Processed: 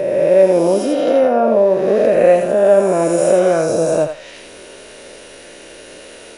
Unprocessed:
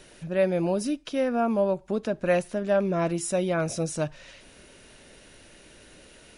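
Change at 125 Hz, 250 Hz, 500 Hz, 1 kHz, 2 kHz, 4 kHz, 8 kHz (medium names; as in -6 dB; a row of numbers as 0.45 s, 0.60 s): +4.0 dB, +8.5 dB, +15.0 dB, +11.5 dB, +7.5 dB, no reading, +7.5 dB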